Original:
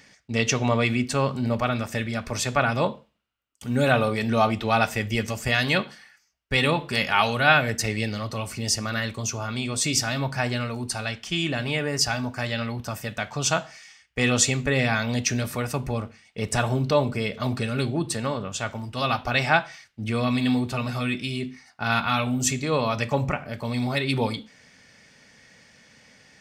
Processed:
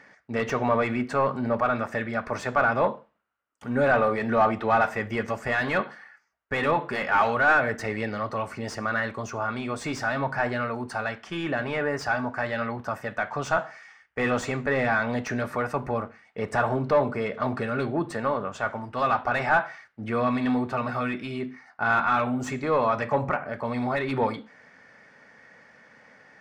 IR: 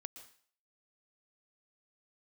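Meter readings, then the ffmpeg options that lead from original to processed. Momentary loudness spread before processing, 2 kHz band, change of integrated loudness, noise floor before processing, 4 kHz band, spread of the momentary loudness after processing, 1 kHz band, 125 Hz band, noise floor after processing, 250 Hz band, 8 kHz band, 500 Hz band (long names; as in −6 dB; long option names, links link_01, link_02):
9 LU, −0.5 dB, −1.5 dB, −60 dBFS, −13.5 dB, 9 LU, +2.0 dB, −7.5 dB, −60 dBFS, −2.5 dB, −17.5 dB, +1.0 dB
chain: -filter_complex "[0:a]asplit=2[link_01][link_02];[link_02]highpass=frequency=720:poles=1,volume=20dB,asoftclip=type=tanh:threshold=-3dB[link_03];[link_01][link_03]amix=inputs=2:normalize=0,lowpass=frequency=1300:poles=1,volume=-6dB,highshelf=frequency=2200:width_type=q:width=1.5:gain=-7.5,volume=-6.5dB"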